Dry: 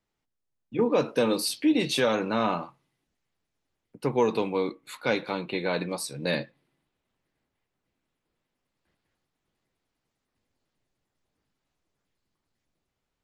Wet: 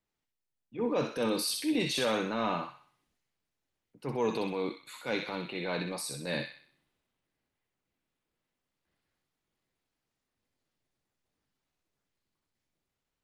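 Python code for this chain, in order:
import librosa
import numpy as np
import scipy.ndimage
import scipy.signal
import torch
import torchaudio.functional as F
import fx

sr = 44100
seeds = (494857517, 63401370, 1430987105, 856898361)

y = fx.transient(x, sr, attack_db=-7, sustain_db=4)
y = fx.echo_wet_highpass(y, sr, ms=63, feedback_pct=43, hz=1600.0, wet_db=-3.0)
y = F.gain(torch.from_numpy(y), -5.0).numpy()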